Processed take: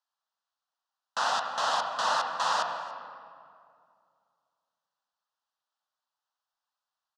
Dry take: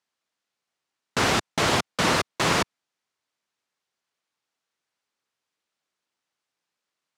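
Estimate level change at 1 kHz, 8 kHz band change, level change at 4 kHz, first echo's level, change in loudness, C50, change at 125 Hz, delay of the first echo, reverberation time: −0.5 dB, −9.5 dB, −6.5 dB, −19.5 dB, −5.5 dB, 5.0 dB, below −25 dB, 285 ms, 2.3 s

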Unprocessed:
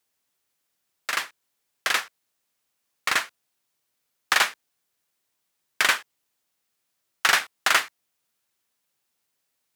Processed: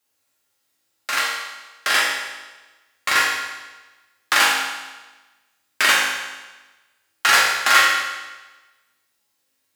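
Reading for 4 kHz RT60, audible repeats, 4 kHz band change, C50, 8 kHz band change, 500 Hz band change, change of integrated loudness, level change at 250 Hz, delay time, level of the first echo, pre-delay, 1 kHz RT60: 1.1 s, no echo audible, +6.5 dB, 1.0 dB, +6.0 dB, +6.0 dB, +5.5 dB, +7.0 dB, no echo audible, no echo audible, 4 ms, 1.2 s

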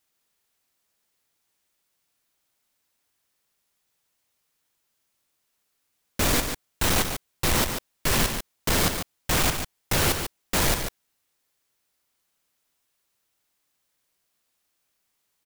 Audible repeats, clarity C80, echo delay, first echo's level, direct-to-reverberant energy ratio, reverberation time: 1, no reverb audible, 144 ms, −7.5 dB, no reverb audible, no reverb audible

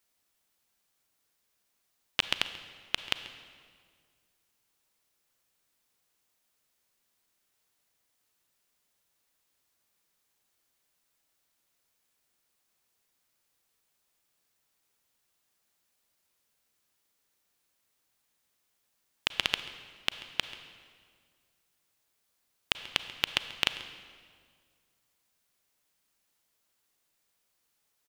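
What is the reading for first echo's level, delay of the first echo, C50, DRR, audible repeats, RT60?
−19.0 dB, 137 ms, 11.0 dB, 10.5 dB, 1, 1.9 s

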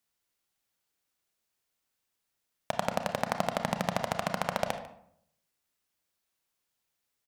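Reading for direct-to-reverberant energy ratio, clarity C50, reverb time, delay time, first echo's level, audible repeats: 6.5 dB, 9.5 dB, 0.70 s, 147 ms, −18.5 dB, 1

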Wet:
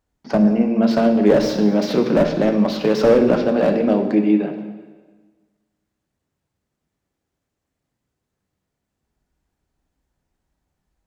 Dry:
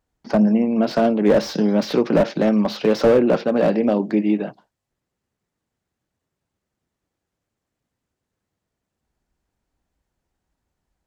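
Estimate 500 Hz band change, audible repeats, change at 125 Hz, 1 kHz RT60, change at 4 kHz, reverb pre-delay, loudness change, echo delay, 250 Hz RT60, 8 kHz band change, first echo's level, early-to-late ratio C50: +1.5 dB, no echo audible, +1.5 dB, 1.4 s, +1.0 dB, 6 ms, +1.5 dB, no echo audible, 1.4 s, can't be measured, no echo audible, 8.0 dB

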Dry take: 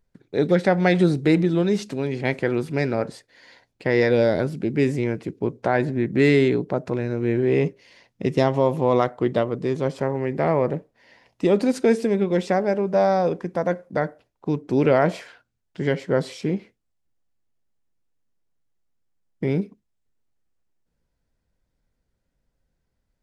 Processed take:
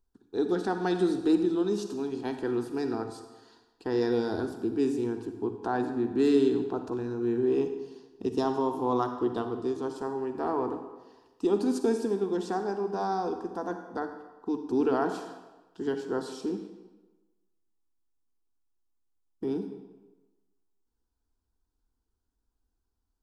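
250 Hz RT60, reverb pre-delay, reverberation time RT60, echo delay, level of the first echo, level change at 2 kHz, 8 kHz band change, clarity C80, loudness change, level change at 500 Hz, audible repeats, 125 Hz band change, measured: 1.2 s, 39 ms, 1.2 s, no echo audible, no echo audible, −13.5 dB, can't be measured, 9.5 dB, −7.5 dB, −8.0 dB, no echo audible, −16.5 dB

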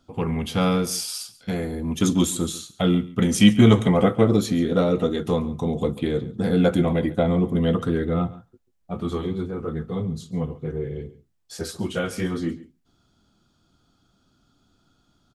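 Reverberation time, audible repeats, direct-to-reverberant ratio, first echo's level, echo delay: no reverb audible, 1, no reverb audible, −18.5 dB, 139 ms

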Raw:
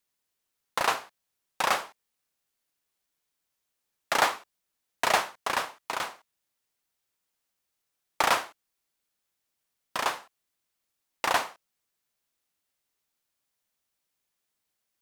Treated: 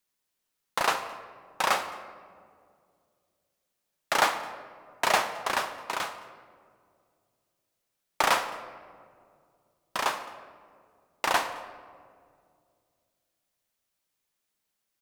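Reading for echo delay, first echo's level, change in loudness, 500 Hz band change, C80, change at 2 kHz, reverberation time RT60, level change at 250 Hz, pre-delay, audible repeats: 215 ms, −23.5 dB, 0.0 dB, +1.0 dB, 12.0 dB, +0.5 dB, 2.1 s, +1.0 dB, 3 ms, 1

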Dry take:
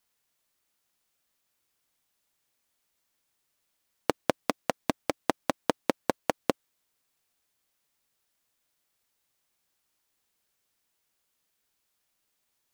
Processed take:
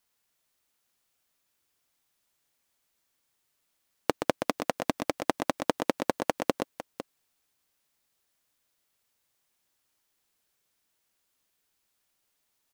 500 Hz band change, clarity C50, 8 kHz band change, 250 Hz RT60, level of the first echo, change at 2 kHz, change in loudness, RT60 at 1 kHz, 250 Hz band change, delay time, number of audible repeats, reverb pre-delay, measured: +1.0 dB, no reverb audible, +1.0 dB, no reverb audible, −7.5 dB, +1.0 dB, +0.5 dB, no reverb audible, +1.0 dB, 123 ms, 2, no reverb audible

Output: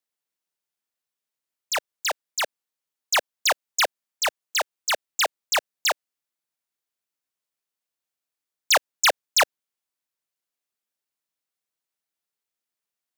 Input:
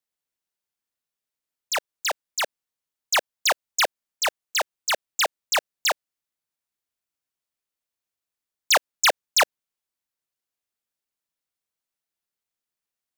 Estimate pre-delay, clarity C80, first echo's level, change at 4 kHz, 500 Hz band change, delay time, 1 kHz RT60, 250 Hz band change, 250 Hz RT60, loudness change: no reverb audible, no reverb audible, no echo audible, 0.0 dB, −0.5 dB, no echo audible, no reverb audible, −1.0 dB, no reverb audible, 0.0 dB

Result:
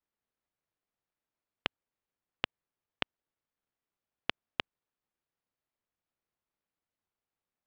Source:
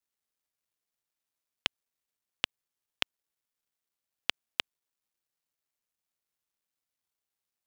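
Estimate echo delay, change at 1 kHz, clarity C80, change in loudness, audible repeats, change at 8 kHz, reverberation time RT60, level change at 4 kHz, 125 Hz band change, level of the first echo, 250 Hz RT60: no echo audible, +2.0 dB, no reverb audible, −3.5 dB, no echo audible, −16.5 dB, no reverb audible, −5.5 dB, +5.0 dB, no echo audible, no reverb audible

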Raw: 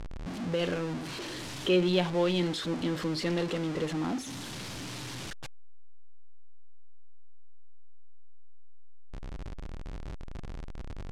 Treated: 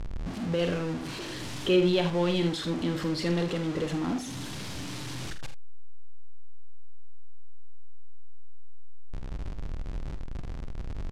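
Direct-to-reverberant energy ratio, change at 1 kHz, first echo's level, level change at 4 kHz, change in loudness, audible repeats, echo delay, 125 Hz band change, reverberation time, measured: no reverb audible, +1.0 dB, −9.5 dB, +1.0 dB, +1.0 dB, 2, 47 ms, +3.0 dB, no reverb audible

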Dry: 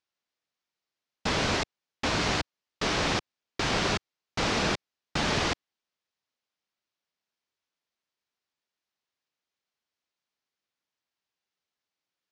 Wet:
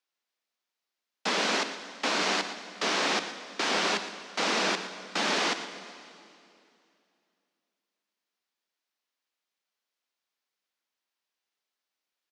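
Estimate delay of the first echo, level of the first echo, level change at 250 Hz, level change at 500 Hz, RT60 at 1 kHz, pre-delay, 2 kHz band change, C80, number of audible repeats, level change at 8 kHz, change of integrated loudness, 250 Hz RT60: 116 ms, −12.5 dB, −3.0 dB, −0.5 dB, 2.5 s, 40 ms, +1.5 dB, 9.0 dB, 1, +1.5 dB, +0.5 dB, 2.8 s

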